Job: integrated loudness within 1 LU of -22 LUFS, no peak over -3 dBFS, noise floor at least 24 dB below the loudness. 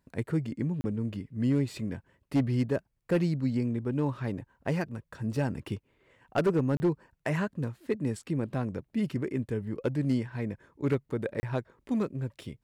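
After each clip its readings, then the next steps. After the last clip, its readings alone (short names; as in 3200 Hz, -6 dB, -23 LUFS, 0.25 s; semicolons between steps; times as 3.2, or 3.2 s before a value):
clipped 0.6%; flat tops at -19.5 dBFS; dropouts 3; longest dropout 30 ms; loudness -31.5 LUFS; peak -19.5 dBFS; loudness target -22.0 LUFS
-> clip repair -19.5 dBFS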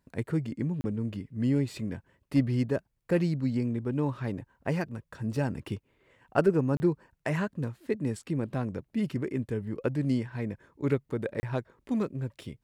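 clipped 0.0%; dropouts 3; longest dropout 30 ms
-> interpolate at 0.81/6.77/11.4, 30 ms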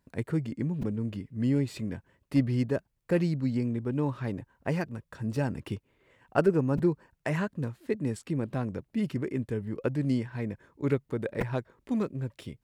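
dropouts 0; loudness -31.0 LUFS; peak -10.5 dBFS; loudness target -22.0 LUFS
-> gain +9 dB; limiter -3 dBFS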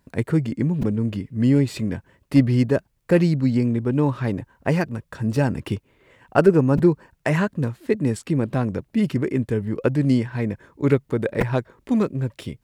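loudness -22.0 LUFS; peak -3.0 dBFS; noise floor -67 dBFS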